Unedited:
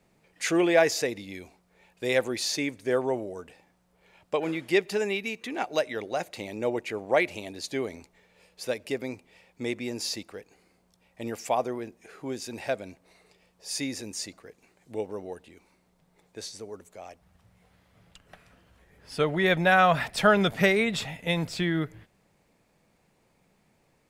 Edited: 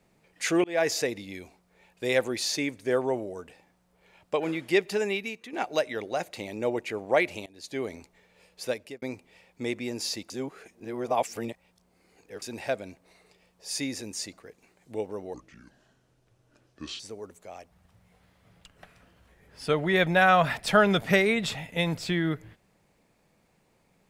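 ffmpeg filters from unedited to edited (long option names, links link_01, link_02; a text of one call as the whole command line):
ffmpeg -i in.wav -filter_complex "[0:a]asplit=9[link_01][link_02][link_03][link_04][link_05][link_06][link_07][link_08][link_09];[link_01]atrim=end=0.64,asetpts=PTS-STARTPTS,afade=type=out:start_time=0.636:duration=0.004:curve=hsin[link_10];[link_02]atrim=start=0.64:end=5.53,asetpts=PTS-STARTPTS,afade=type=in:duration=0.28,afade=type=out:start_time=4.51:duration=0.38:silence=0.316228[link_11];[link_03]atrim=start=5.53:end=7.46,asetpts=PTS-STARTPTS,afade=type=in:duration=0.004:curve=hsin:silence=0.316228,afade=type=out:start_time=1.926:duration=0.004:curve=hsin:silence=0.0668344[link_12];[link_04]atrim=start=7.46:end=9.02,asetpts=PTS-STARTPTS,afade=type=in:duration=0.42:silence=0.0668344,afade=type=out:start_time=1.25:duration=0.31[link_13];[link_05]atrim=start=9.02:end=10.302,asetpts=PTS-STARTPTS,afade=type=in:duration=0.004:curve=hsin[link_14];[link_06]atrim=start=10.298:end=12.422,asetpts=PTS-STARTPTS,areverse[link_15];[link_07]atrim=start=12.418:end=15.344[link_16];[link_08]atrim=start=15.34:end=16.5,asetpts=PTS-STARTPTS,asetrate=30870,aresample=44100[link_17];[link_09]atrim=start=16.496[link_18];[link_10][link_11][link_12][link_13][link_14]concat=n=5:v=0:a=1[link_19];[link_19][link_15]acrossfade=duration=0.004:curve1=hsin:curve2=hsin[link_20];[link_20][link_16]acrossfade=duration=0.004:curve1=hsin:curve2=hsin[link_21];[link_21][link_17]acrossfade=duration=0.004:curve1=hsin:curve2=hsin[link_22];[link_22][link_18]acrossfade=duration=0.004:curve1=hsin:curve2=hsin" out.wav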